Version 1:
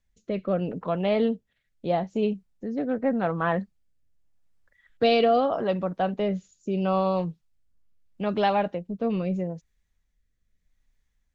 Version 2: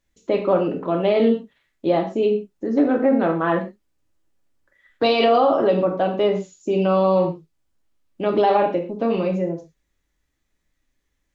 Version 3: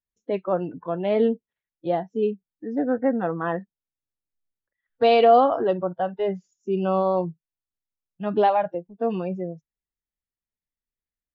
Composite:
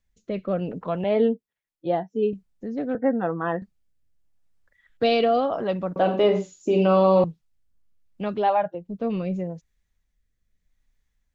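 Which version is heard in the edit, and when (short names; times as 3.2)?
1
1.04–2.33 from 3
2.95–3.62 from 3
5.96–7.24 from 2
8.38–8.82 from 3, crossfade 0.24 s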